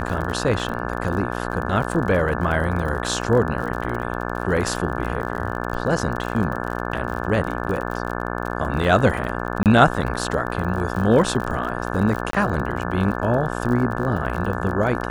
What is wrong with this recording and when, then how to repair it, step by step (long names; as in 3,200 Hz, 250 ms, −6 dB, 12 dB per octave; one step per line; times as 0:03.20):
mains buzz 60 Hz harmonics 29 −27 dBFS
surface crackle 42 per second −28 dBFS
0:09.63–0:09.66: drop-out 28 ms
0:12.31–0:12.33: drop-out 23 ms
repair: click removal
hum removal 60 Hz, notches 29
repair the gap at 0:09.63, 28 ms
repair the gap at 0:12.31, 23 ms